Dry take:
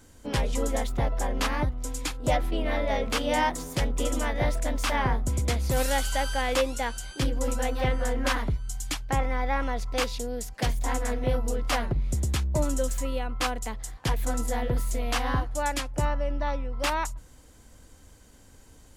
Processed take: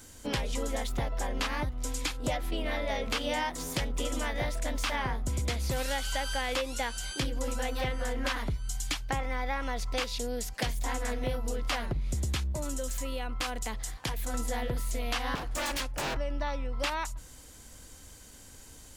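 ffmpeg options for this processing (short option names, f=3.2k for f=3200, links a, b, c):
-filter_complex "[0:a]asettb=1/sr,asplit=3[a][b][c];[a]atrim=end=12.524[d];[b]atrim=start=12.52:end=14.34,asetpts=PTS-STARTPTS,afade=t=in:d=0.004:c=qsin,afade=t=out:st=1.816:d=0.004:c=qsin,acompressor=threshold=-30dB:ratio=4:attack=3.2:release=140:knee=1:detection=peak[e];[c]atrim=start=14.336[f];[d][e]acrossfade=d=0.004:c1=hsin:c2=qsin[g];[g][f]acrossfade=d=0.004:c1=qsin:c2=hsin,asettb=1/sr,asplit=3[h][i][j];[h]atrim=end=15.354[k];[i]atrim=start=15.35:end=16.17,asetpts=PTS-STARTPTS,afade=t=in:d=0.004:c=qsin,afade=t=out:st=0.816:d=0.004:c=qsin,aeval=exprs='0.0398*(abs(mod(val(0)/0.0398+3,4)-2)-1)':c=same[l];[j]atrim=start=16.166[m];[k][l]acrossfade=d=0.004:c1=hsin:c2=qsin[n];[n][m]acrossfade=d=0.004:c1=qsin:c2=hsin,acrossover=split=4900[o][p];[p]acompressor=threshold=-44dB:ratio=4:attack=1:release=60[q];[o][q]amix=inputs=2:normalize=0,highshelf=f=2k:g=8.5,acompressor=threshold=-28dB:ratio=6"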